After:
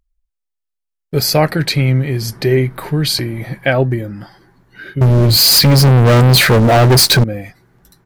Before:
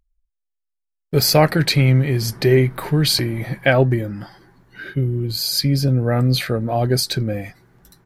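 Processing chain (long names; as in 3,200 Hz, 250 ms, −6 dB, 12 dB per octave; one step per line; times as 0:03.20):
0:05.01–0:07.24: leveller curve on the samples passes 5
level +1 dB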